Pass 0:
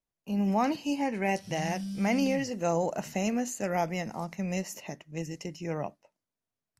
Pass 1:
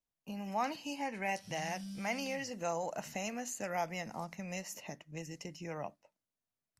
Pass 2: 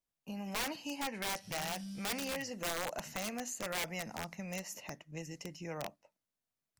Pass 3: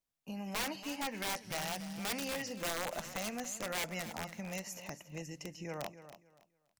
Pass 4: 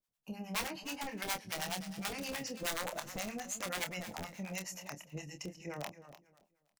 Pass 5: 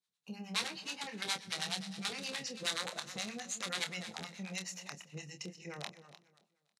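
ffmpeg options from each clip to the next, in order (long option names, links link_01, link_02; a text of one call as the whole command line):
ffmpeg -i in.wav -filter_complex "[0:a]equalizer=frequency=390:width=6.5:gain=-4,acrossover=split=610[link_01][link_02];[link_01]acompressor=threshold=-38dB:ratio=6[link_03];[link_03][link_02]amix=inputs=2:normalize=0,volume=-4dB" out.wav
ffmpeg -i in.wav -af "aeval=exprs='(mod(31.6*val(0)+1,2)-1)/31.6':channel_layout=same" out.wav
ffmpeg -i in.wav -af "aecho=1:1:283|566|849:0.224|0.0537|0.0129" out.wav
ffmpeg -i in.wav -filter_complex "[0:a]acrossover=split=640[link_01][link_02];[link_01]aeval=exprs='val(0)*(1-1/2+1/2*cos(2*PI*9.5*n/s))':channel_layout=same[link_03];[link_02]aeval=exprs='val(0)*(1-1/2-1/2*cos(2*PI*9.5*n/s))':channel_layout=same[link_04];[link_03][link_04]amix=inputs=2:normalize=0,asplit=2[link_05][link_06];[link_06]adelay=27,volume=-8dB[link_07];[link_05][link_07]amix=inputs=2:normalize=0,volume=3.5dB" out.wav
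ffmpeg -i in.wav -af "highpass=frequency=140:width=0.5412,highpass=frequency=140:width=1.3066,equalizer=frequency=290:width_type=q:width=4:gain=-9,equalizer=frequency=620:width_type=q:width=4:gain=-8,equalizer=frequency=920:width_type=q:width=4:gain=-4,equalizer=frequency=3900:width_type=q:width=4:gain=10,lowpass=frequency=9900:width=0.5412,lowpass=frequency=9900:width=1.3066,aecho=1:1:125|250|375:0.0841|0.0337|0.0135" out.wav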